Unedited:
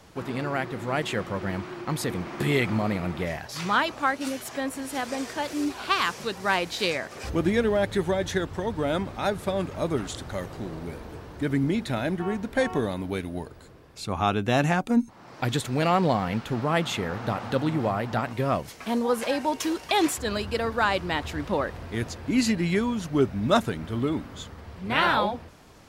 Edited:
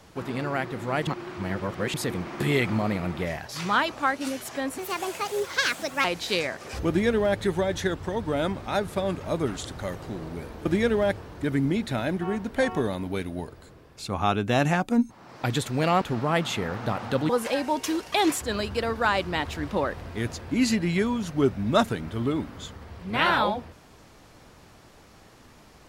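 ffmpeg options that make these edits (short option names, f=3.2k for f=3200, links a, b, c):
-filter_complex "[0:a]asplit=9[a][b][c][d][e][f][g][h][i];[a]atrim=end=1.072[j];[b]atrim=start=1.068:end=1.942,asetpts=PTS-STARTPTS,areverse[k];[c]atrim=start=1.938:end=4.784[l];[d]atrim=start=4.78:end=6.55,asetpts=PTS-STARTPTS,asetrate=61740,aresample=44100[m];[e]atrim=start=6.546:end=11.162[n];[f]atrim=start=7.388:end=7.912[o];[g]atrim=start=11.158:end=16.002[p];[h]atrim=start=16.418:end=17.702[q];[i]atrim=start=19.058[r];[j][k]acrossfade=d=0.004:c1=hsin:c2=hsin[s];[s][l]acrossfade=d=0.004:c1=hsin:c2=hsin[t];[t][m]acrossfade=d=0.004:c1=hsin:c2=hsin[u];[u][n]acrossfade=d=0.004:c1=hsin:c2=hsin[v];[v][o]acrossfade=d=0.004:c1=hsin:c2=hsin[w];[w][p]acrossfade=d=0.004:c1=hsin:c2=hsin[x];[x][q]acrossfade=d=0.004:c1=hsin:c2=hsin[y];[y][r]acrossfade=d=0.004:c1=hsin:c2=hsin"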